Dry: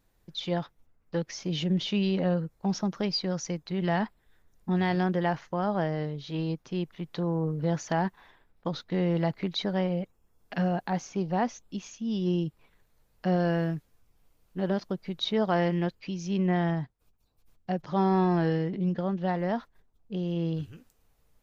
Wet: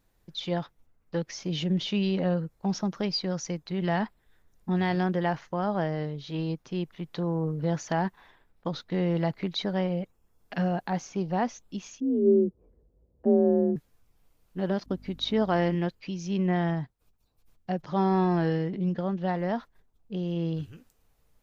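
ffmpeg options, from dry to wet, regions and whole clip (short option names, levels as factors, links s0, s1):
-filter_complex "[0:a]asettb=1/sr,asplit=3[s0][s1][s2];[s0]atrim=end=12.004[s3];[s1]atrim=start=12:end=13.76,asetpts=PTS-STARTPTS,afade=t=in:d=0.004:c=qsin,afade=t=out:st=1.756:d=0.004:c=qsin,afreqshift=39,lowpass=f=430:t=q:w=3.2[s4];[s2]atrim=start=13.756[s5];[s3][s4]acrossfade=d=0.004:c1=hsin:c2=qsin[s6];[s6][s5]acrossfade=d=0.004:c1=qsin:c2=hsin,asettb=1/sr,asplit=3[s7][s8][s9];[s7]atrim=end=14.864[s10];[s8]atrim=start=14.86:end=15.75,asetpts=PTS-STARTPTS,afade=t=in:d=0.004:c=qsin,afade=t=out:st=0.886:d=0.004:c=qsin,agate=range=0.0224:threshold=0.002:ratio=3:release=100:detection=peak,aeval=exprs='val(0)+0.00316*(sin(2*PI*50*n/s)+sin(2*PI*2*50*n/s)/2+sin(2*PI*3*50*n/s)/3+sin(2*PI*4*50*n/s)/4+sin(2*PI*5*50*n/s)/5)':c=same,equalizer=f=270:t=o:w=0.26:g=11.5[s11];[s9]atrim=start=15.746[s12];[s10][s11]acrossfade=d=0.004:c1=hsin:c2=qsin[s13];[s13][s12]acrossfade=d=0.004:c1=qsin:c2=hsin"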